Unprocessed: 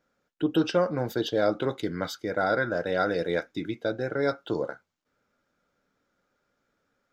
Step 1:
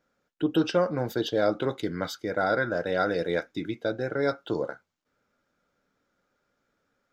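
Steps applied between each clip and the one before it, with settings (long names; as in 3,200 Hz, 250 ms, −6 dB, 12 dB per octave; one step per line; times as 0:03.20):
no processing that can be heard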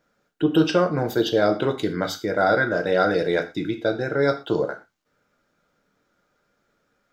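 reverb whose tail is shaped and stops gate 140 ms falling, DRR 6.5 dB
level +5 dB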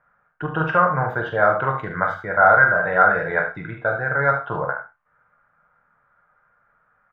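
drawn EQ curve 140 Hz 0 dB, 320 Hz −16 dB, 600 Hz −1 dB, 1,100 Hz +10 dB, 1,800 Hz +5 dB, 4,600 Hz −30 dB
ambience of single reflections 44 ms −8 dB, 74 ms −9.5 dB
level +1.5 dB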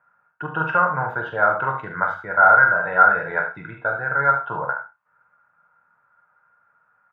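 high-pass filter 88 Hz
hollow resonant body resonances 940/1,400/2,600 Hz, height 9 dB, ringing for 20 ms
level −5 dB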